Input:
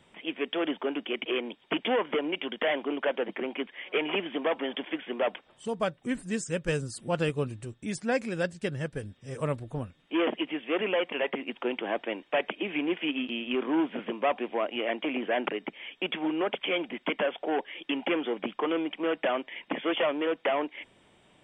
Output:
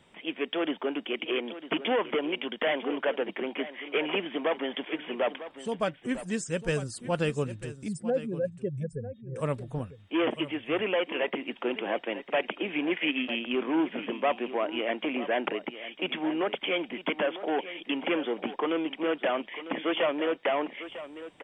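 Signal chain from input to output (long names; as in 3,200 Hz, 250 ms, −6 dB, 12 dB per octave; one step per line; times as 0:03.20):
0:07.88–0:09.36: expanding power law on the bin magnitudes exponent 2.6
0:12.91–0:13.39: parametric band 2,000 Hz +10 dB 0.63 octaves
single-tap delay 950 ms −13.5 dB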